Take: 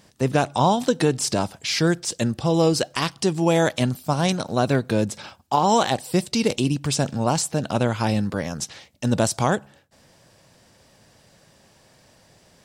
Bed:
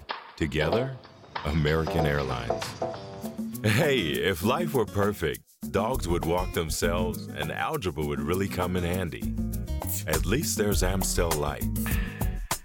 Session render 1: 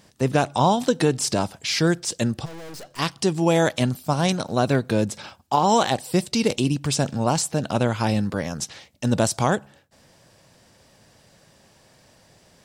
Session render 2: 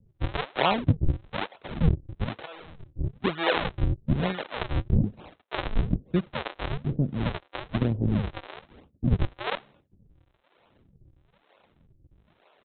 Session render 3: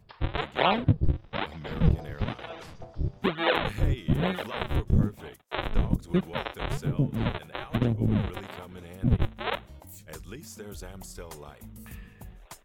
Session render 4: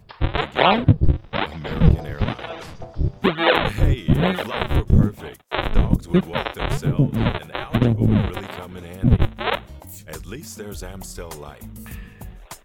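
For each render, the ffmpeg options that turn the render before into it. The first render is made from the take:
-filter_complex "[0:a]asplit=3[a][b][c];[a]afade=t=out:st=2.44:d=0.02[d];[b]aeval=exprs='(tanh(79.4*val(0)+0.7)-tanh(0.7))/79.4':c=same,afade=t=in:st=2.44:d=0.02,afade=t=out:st=2.98:d=0.02[e];[c]afade=t=in:st=2.98:d=0.02[f];[d][e][f]amix=inputs=3:normalize=0"
-filter_complex "[0:a]aresample=8000,acrusher=samples=21:mix=1:aa=0.000001:lfo=1:lforange=33.6:lforate=1.1,aresample=44100,acrossover=split=420[a][b];[a]aeval=exprs='val(0)*(1-1/2+1/2*cos(2*PI*1*n/s))':c=same[c];[b]aeval=exprs='val(0)*(1-1/2-1/2*cos(2*PI*1*n/s))':c=same[d];[c][d]amix=inputs=2:normalize=0"
-filter_complex "[1:a]volume=-16.5dB[a];[0:a][a]amix=inputs=2:normalize=0"
-af "volume=8dB,alimiter=limit=-1dB:level=0:latency=1"

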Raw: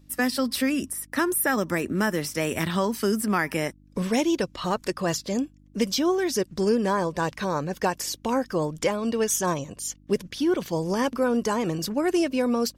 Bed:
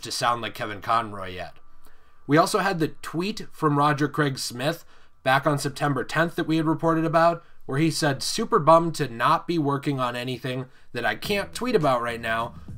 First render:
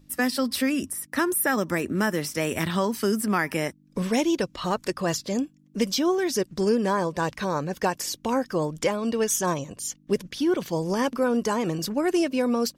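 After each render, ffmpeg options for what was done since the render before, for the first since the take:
-af "bandreject=f=50:t=h:w=4,bandreject=f=100:t=h:w=4"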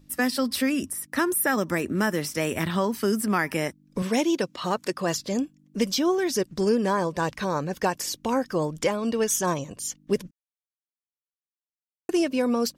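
-filter_complex "[0:a]asettb=1/sr,asplit=3[a][b][c];[a]atrim=end=2.514[d];[b]atrim=start=2.51:end=3.08,asetpts=PTS-STARTPTS,afade=t=in:d=0.004:c=qsin,afade=t=out:st=0.566:d=0.004:c=qsin,equalizer=f=6.8k:t=o:w=2:g=-3.5[e];[c]atrim=start=3.076[f];[d][e]acrossfade=d=0.004:c1=hsin:c2=qsin[g];[g][f]acrossfade=d=0.004:c1=qsin:c2=hsin,asettb=1/sr,asplit=3[h][i][j];[h]atrim=end=4.024[k];[i]atrim=start=4.02:end=5.15,asetpts=PTS-STARTPTS,afade=t=in:d=0.004:c=qsin,afade=t=out:st=1.126:d=0.004:c=qsin,highpass=150[l];[j]atrim=start=5.146[m];[k][l]acrossfade=d=0.004:c1=hsin:c2=qsin[n];[n][m]acrossfade=d=0.004:c1=qsin:c2=hsin,asplit=3[o][p][q];[o]atrim=end=10.31,asetpts=PTS-STARTPTS,afade=t=out:st=10.306:d=0.004:c=hsin[r];[p]atrim=start=10.31:end=12.09,asetpts=PTS-STARTPTS,volume=0[s];[q]atrim=start=12.09,asetpts=PTS-STARTPTS,afade=t=in:d=0.004:c=hsin[t];[r][s][t]concat=n=3:v=0:a=1"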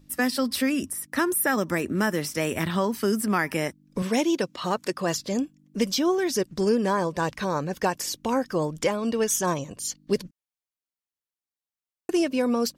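-filter_complex "[0:a]asettb=1/sr,asplit=3[a][b][c];[a]atrim=end=9.844[d];[b]atrim=start=9.84:end=10.24,asetpts=PTS-STARTPTS,afade=t=in:d=0.004:c=qsin,afade=t=out:st=0.396:d=0.004:c=qsin,equalizer=f=4.4k:t=o:w=0.3:g=11.5[e];[c]atrim=start=10.236[f];[d][e]acrossfade=d=0.004:c1=hsin:c2=qsin[g];[g][f]acrossfade=d=0.004:c1=qsin:c2=hsin"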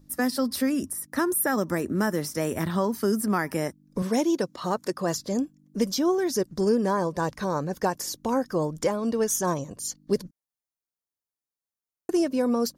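-af "equalizer=f=2.7k:w=1.3:g=-10.5,bandreject=f=7.9k:w=16"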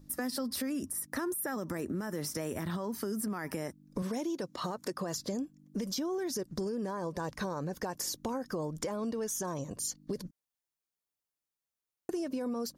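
-af "alimiter=limit=-21.5dB:level=0:latency=1:release=36,acompressor=threshold=-32dB:ratio=6"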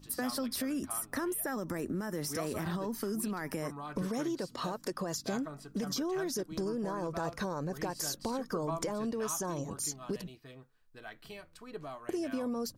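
-filter_complex "[1:a]volume=-22.5dB[a];[0:a][a]amix=inputs=2:normalize=0"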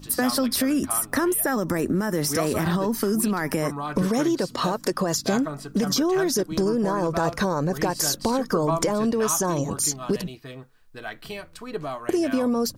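-af "volume=12dB"

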